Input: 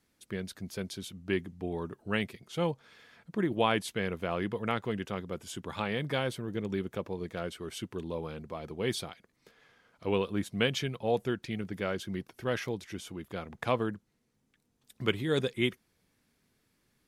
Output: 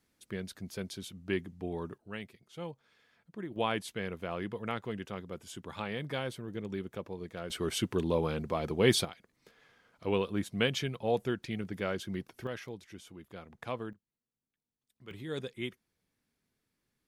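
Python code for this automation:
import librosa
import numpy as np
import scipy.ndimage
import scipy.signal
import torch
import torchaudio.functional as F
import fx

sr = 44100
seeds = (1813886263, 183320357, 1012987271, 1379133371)

y = fx.gain(x, sr, db=fx.steps((0.0, -2.0), (1.98, -11.0), (3.56, -4.5), (7.5, 7.0), (9.05, -1.0), (12.47, -8.5), (13.93, -20.0), (15.11, -9.0)))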